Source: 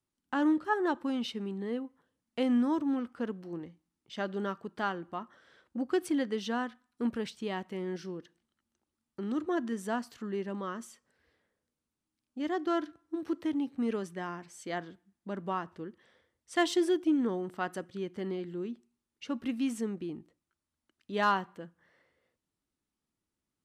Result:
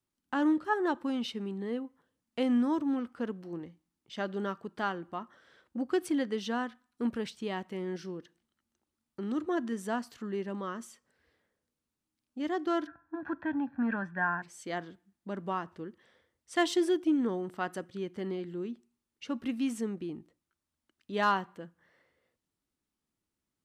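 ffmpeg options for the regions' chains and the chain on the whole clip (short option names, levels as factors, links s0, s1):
-filter_complex "[0:a]asettb=1/sr,asplit=3[s0][s1][s2];[s0]atrim=end=12.874[s3];[s1]atrim=start=12.87:end=14.42,asetpts=PTS-STARTPTS,afade=t=in:d=0.004:c=qsin,afade=t=out:st=1.546:d=0.004:c=qsin,lowpass=f=1500:t=q:w=5.1,bandreject=f=50:t=h:w=6,bandreject=f=100:t=h:w=6,bandreject=f=150:t=h:w=6,aecho=1:1:1.2:0.79,atrim=end_sample=68355[s4];[s2]atrim=start=14.416[s5];[s3][s4]acrossfade=d=0.004:c1=hsin:c2=qsin[s6];[s6][s5]acrossfade=d=0.004:c1=qsin:c2=hsin"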